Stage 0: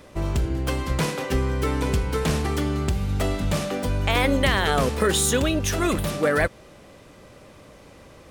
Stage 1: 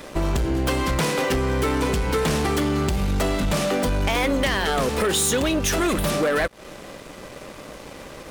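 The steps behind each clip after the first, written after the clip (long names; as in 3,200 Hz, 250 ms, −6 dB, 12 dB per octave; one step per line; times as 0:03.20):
parametric band 90 Hz −9 dB 1.2 octaves
downward compressor 3 to 1, threshold −29 dBFS, peak gain reduction 9.5 dB
leveller curve on the samples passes 3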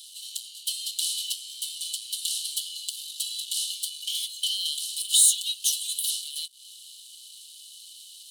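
Chebyshev high-pass with heavy ripple 2,900 Hz, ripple 9 dB
level +7.5 dB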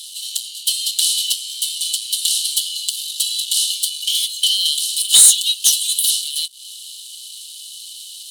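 sine wavefolder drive 3 dB, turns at −7 dBFS
level +4.5 dB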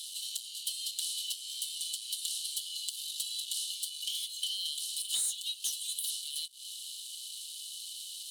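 downward compressor 3 to 1, threshold −28 dBFS, peak gain reduction 16 dB
level −8 dB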